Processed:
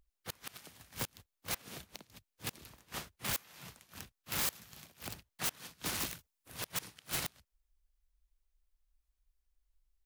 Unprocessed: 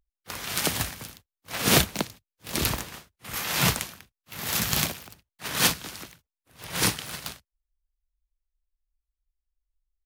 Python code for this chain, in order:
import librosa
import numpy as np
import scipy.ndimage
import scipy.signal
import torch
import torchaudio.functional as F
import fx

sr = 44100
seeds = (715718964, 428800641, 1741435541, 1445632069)

y = fx.high_shelf(x, sr, hz=5200.0, db=5.5, at=(6.0, 6.72))
y = fx.gate_flip(y, sr, shuts_db=-19.0, range_db=-33)
y = (np.mod(10.0 ** (31.0 / 20.0) * y + 1.0, 2.0) - 1.0) / 10.0 ** (31.0 / 20.0)
y = F.gain(torch.from_numpy(y), 4.0).numpy()